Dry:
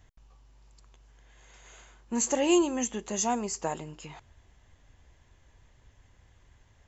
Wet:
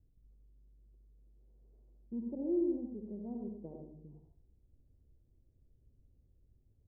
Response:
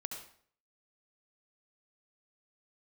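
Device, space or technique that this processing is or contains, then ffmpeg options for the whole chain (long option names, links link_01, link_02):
next room: -filter_complex "[0:a]lowpass=frequency=420:width=0.5412,lowpass=frequency=420:width=1.3066[link_01];[1:a]atrim=start_sample=2205[link_02];[link_01][link_02]afir=irnorm=-1:irlink=0,volume=-6dB"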